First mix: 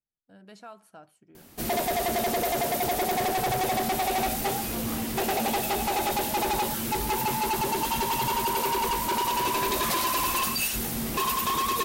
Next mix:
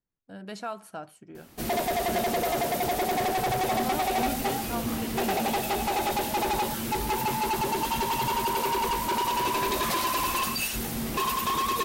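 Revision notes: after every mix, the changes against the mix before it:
speech +10.0 dB; background: add high shelf 6300 Hz -4.5 dB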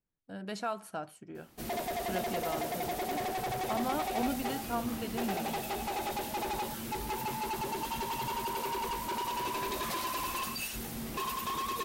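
background -8.0 dB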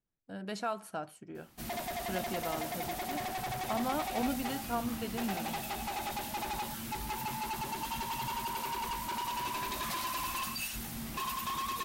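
background: add bell 440 Hz -11 dB 0.79 oct

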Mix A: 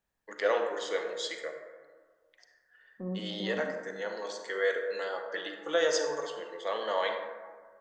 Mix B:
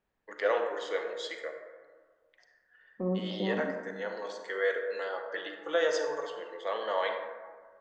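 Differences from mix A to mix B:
second voice +9.0 dB; master: add tone controls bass -7 dB, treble -9 dB

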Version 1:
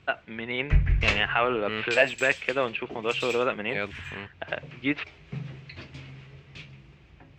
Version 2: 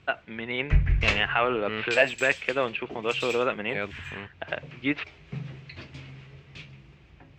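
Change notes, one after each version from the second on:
second voice: add running mean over 6 samples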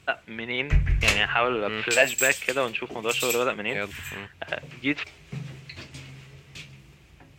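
master: remove air absorption 170 m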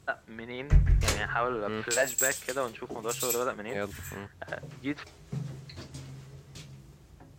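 first voice: add rippled Chebyshev low-pass 6000 Hz, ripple 6 dB; master: add bell 2500 Hz -14 dB 1 oct

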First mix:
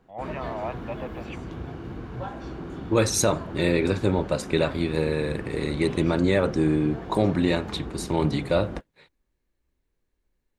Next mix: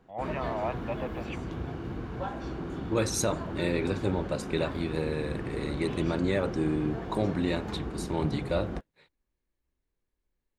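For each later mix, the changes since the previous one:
second voice -6.5 dB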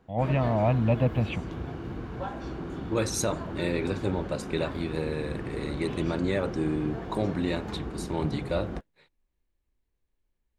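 first voice: remove band-pass 1300 Hz, Q 1.2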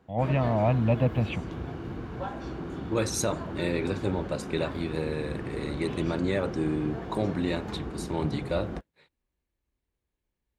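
master: add HPF 45 Hz

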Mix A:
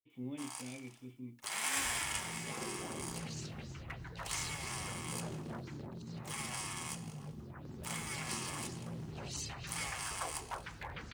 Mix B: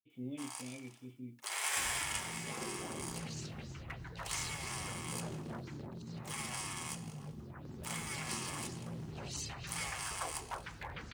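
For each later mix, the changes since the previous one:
speech: add band shelf 1200 Hz -16 dB 1.3 oct; first sound: add brick-wall FIR high-pass 330 Hz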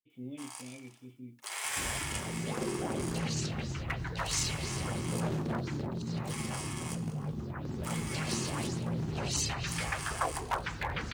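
second sound +10.0 dB

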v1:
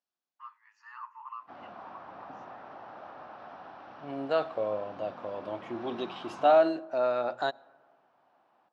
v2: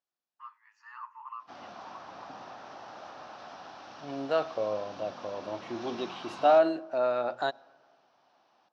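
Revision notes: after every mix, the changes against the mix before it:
background: remove LPF 2000 Hz 12 dB/oct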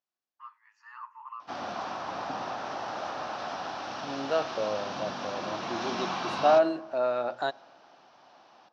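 background +10.5 dB

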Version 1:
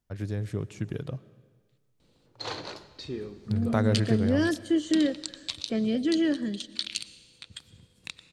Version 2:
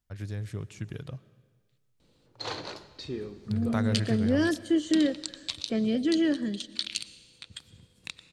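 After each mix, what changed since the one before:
first voice: add bell 360 Hz -7.5 dB 2.9 oct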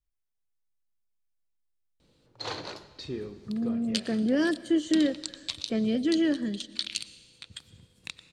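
first voice: muted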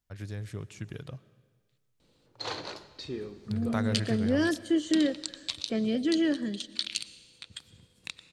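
first voice: unmuted; master: add low shelf 240 Hz -3.5 dB

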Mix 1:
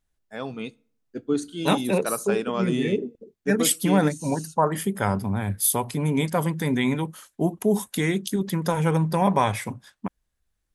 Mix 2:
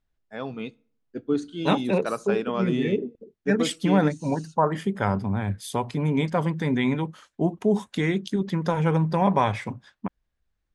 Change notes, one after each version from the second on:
master: add air absorption 120 m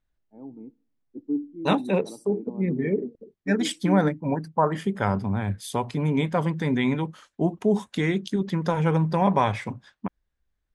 first voice: add vocal tract filter u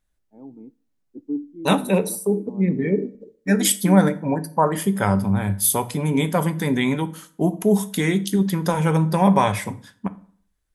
second voice: send on; master: remove air absorption 120 m

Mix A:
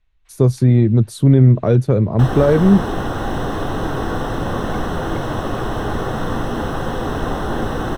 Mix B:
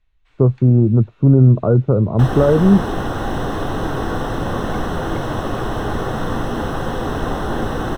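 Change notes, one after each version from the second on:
speech: add brick-wall FIR low-pass 1500 Hz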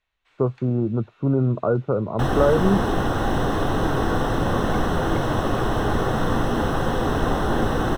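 speech: add tilt +4 dB/oct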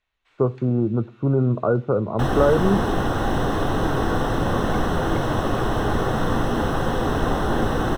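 speech: send on

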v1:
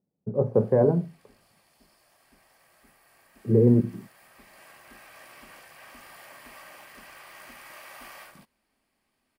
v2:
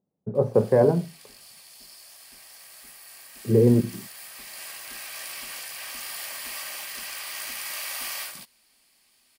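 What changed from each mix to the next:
master: remove EQ curve 250 Hz 0 dB, 1500 Hz -6 dB, 4400 Hz -19 dB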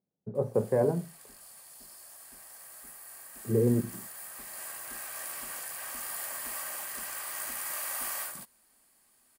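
speech -7.5 dB; background: add band shelf 3500 Hz -10.5 dB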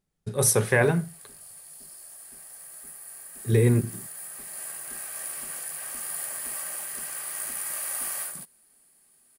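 speech: remove Chebyshev band-pass 160–580 Hz, order 2; master: add thirty-one-band EQ 160 Hz +9 dB, 400 Hz +5 dB, 1000 Hz -5 dB, 10000 Hz +9 dB

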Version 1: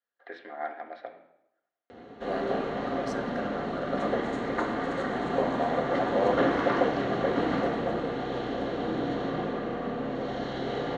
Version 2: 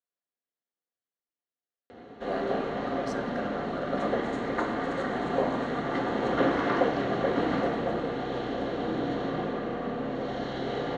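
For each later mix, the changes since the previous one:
first voice: muted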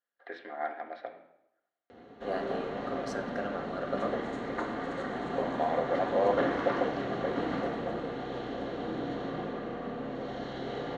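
first voice: unmuted; background -5.0 dB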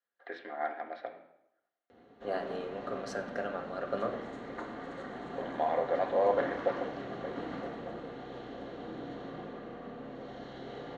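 background -7.0 dB

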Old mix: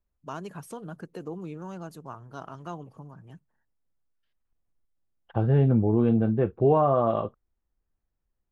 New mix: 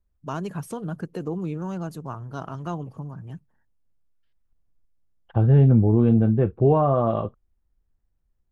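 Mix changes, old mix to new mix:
first voice +4.5 dB; master: add low shelf 190 Hz +9.5 dB

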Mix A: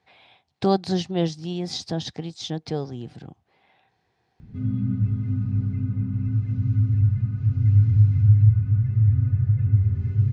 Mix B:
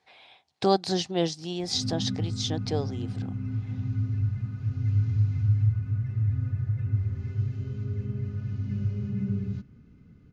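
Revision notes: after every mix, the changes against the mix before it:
background: entry -2.80 s; master: add tone controls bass -8 dB, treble +5 dB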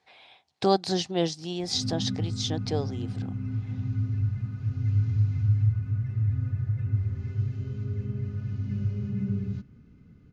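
none

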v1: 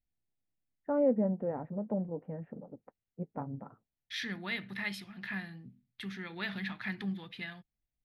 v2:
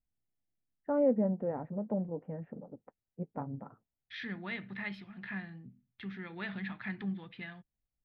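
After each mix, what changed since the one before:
second voice: add air absorption 330 m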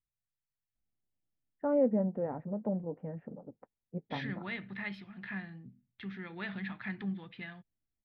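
first voice: entry +0.75 s

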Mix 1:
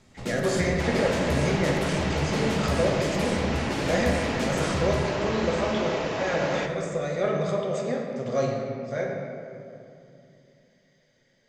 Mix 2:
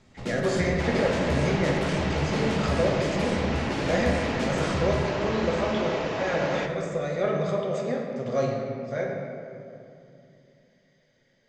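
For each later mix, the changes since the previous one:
master: add air absorption 55 m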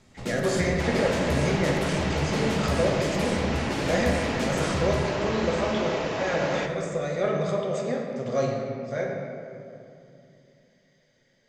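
master: remove air absorption 55 m

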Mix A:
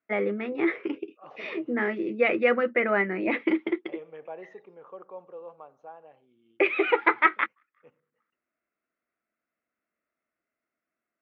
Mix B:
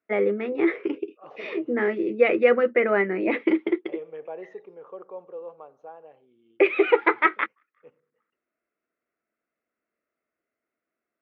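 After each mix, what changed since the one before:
master: add bell 430 Hz +6.5 dB 0.78 oct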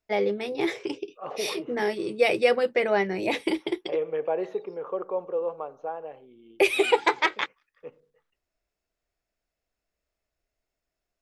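first voice: remove speaker cabinet 210–2400 Hz, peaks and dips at 230 Hz +9 dB, 330 Hz +6 dB, 480 Hz +3 dB, 830 Hz -6 dB, 1300 Hz +9 dB, 2000 Hz +5 dB; second voice +9.5 dB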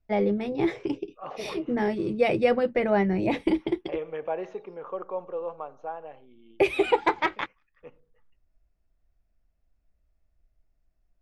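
first voice: add tilt -4 dB/oct; master: add bell 430 Hz -6.5 dB 0.78 oct

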